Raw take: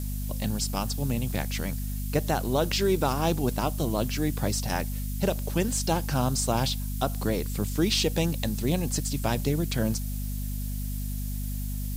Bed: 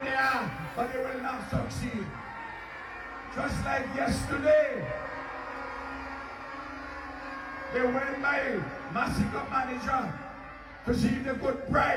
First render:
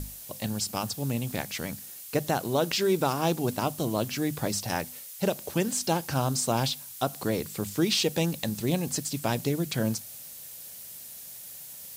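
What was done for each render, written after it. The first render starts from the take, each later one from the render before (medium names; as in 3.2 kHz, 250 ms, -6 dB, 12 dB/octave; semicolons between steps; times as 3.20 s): hum notches 50/100/150/200/250 Hz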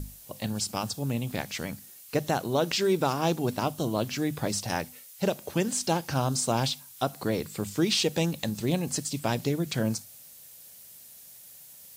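noise print and reduce 6 dB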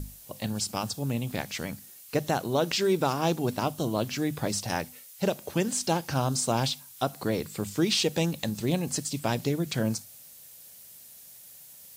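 no audible change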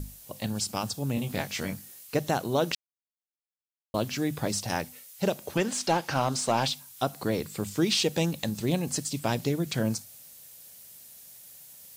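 1.15–2.07 s: doubling 21 ms -4.5 dB; 2.75–3.94 s: mute; 5.57–6.68 s: overdrive pedal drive 12 dB, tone 2.8 kHz, clips at -13 dBFS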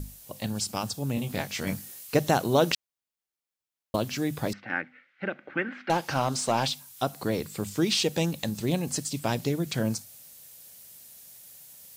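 1.67–3.96 s: gain +4 dB; 4.53–5.90 s: cabinet simulation 280–2300 Hz, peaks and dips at 290 Hz +5 dB, 430 Hz -10 dB, 650 Hz -9 dB, 970 Hz -10 dB, 1.5 kHz +10 dB, 2.1 kHz +7 dB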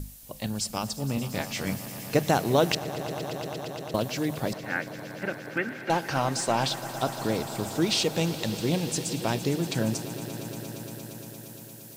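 echo with a slow build-up 116 ms, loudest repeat 5, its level -17 dB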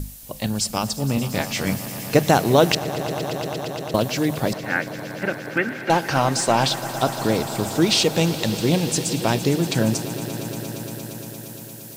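trim +7 dB; peak limiter -3 dBFS, peak gain reduction 1 dB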